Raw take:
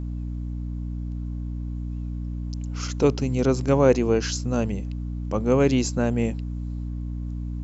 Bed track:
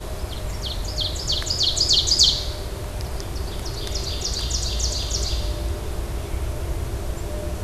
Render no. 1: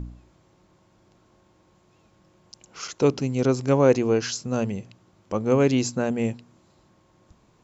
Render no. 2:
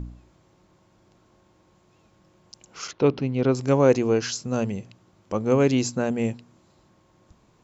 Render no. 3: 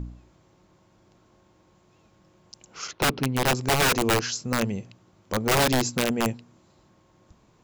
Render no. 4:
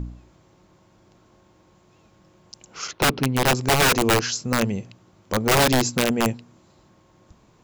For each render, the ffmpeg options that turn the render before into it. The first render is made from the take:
-af "bandreject=f=60:t=h:w=4,bandreject=f=120:t=h:w=4,bandreject=f=180:t=h:w=4,bandreject=f=240:t=h:w=4,bandreject=f=300:t=h:w=4"
-filter_complex "[0:a]asettb=1/sr,asplit=3[a][b][c];[a]atrim=end=2.914[d];[b]atrim=start=2.91:end=3.55,asetpts=PTS-STARTPTS,afade=t=in:d=0.004:c=qsin,afade=t=out:st=0.636:d=0.004:c=qsin,lowpass=f=4k:w=0.5412,lowpass=f=4k:w=1.3066[e];[c]atrim=start=3.546[f];[d][e]acrossfade=d=0.004:c1=hsin:c2=qsin[g];[g][f]acrossfade=d=0.004:c1=qsin:c2=hsin"
-af "aeval=exprs='(mod(6.31*val(0)+1,2)-1)/6.31':c=same"
-af "volume=3.5dB"

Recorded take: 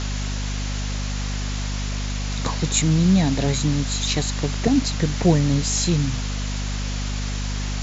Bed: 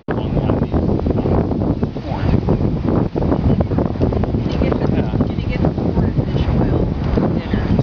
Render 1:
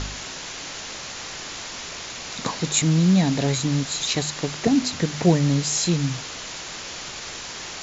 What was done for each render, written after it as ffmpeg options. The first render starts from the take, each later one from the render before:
-af "bandreject=f=50:t=h:w=4,bandreject=f=100:t=h:w=4,bandreject=f=150:t=h:w=4,bandreject=f=200:t=h:w=4,bandreject=f=250:t=h:w=4"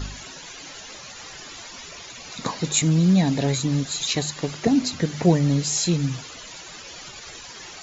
-af "afftdn=nr=13:nf=-35"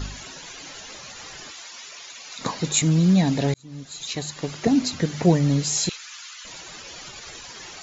-filter_complex "[0:a]asettb=1/sr,asplit=3[a][b][c];[a]atrim=end=1.514[d];[b]atrim=start=1.51:end=2.41,asetpts=PTS-STARTPTS,afade=t=in:d=0.004:c=qsin,afade=t=out:st=0.896:d=0.004:c=qsin,highpass=f=1.1k:p=1[e];[c]atrim=start=2.406[f];[d][e]acrossfade=d=0.004:c1=hsin:c2=qsin[g];[g][f]acrossfade=d=0.004:c1=qsin:c2=hsin,asettb=1/sr,asplit=3[h][i][j];[h]atrim=end=5.894[k];[i]atrim=start=5.89:end=6.45,asetpts=PTS-STARTPTS,afade=t=in:d=0.004:c=qsin,afade=t=out:st=0.556:d=0.004:c=qsin,highpass=f=1.2k:w=0.5412,highpass=f=1.2k:w=1.3066[l];[j]atrim=start=6.446[m];[k][l]acrossfade=d=0.004:c1=hsin:c2=qsin[n];[n][m]acrossfade=d=0.004:c1=qsin:c2=hsin,asplit=2[o][p];[o]atrim=end=3.54,asetpts=PTS-STARTPTS,afade=t=out:st=3.536:d=0.004:c=hsin[q];[p]atrim=start=3.54,asetpts=PTS-STARTPTS,afade=t=in:d=1.17[r];[q][r]concat=n=2:v=0:a=1"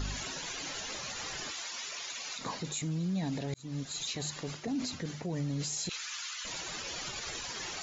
-af "areverse,acompressor=threshold=-27dB:ratio=16,areverse,alimiter=level_in=3dB:limit=-24dB:level=0:latency=1:release=49,volume=-3dB"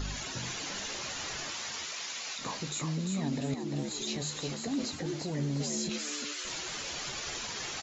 -filter_complex "[0:a]asplit=2[a][b];[b]adelay=14,volume=-13dB[c];[a][c]amix=inputs=2:normalize=0,asplit=2[d][e];[e]asplit=4[f][g][h][i];[f]adelay=348,afreqshift=75,volume=-5dB[j];[g]adelay=696,afreqshift=150,volume=-13.9dB[k];[h]adelay=1044,afreqshift=225,volume=-22.7dB[l];[i]adelay=1392,afreqshift=300,volume=-31.6dB[m];[j][k][l][m]amix=inputs=4:normalize=0[n];[d][n]amix=inputs=2:normalize=0"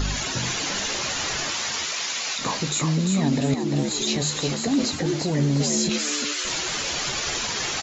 -af "volume=11dB"

